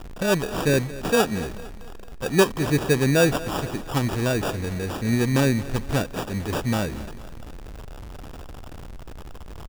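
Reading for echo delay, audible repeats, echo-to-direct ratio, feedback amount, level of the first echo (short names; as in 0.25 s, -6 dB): 0.226 s, 3, -16.0 dB, 50%, -17.0 dB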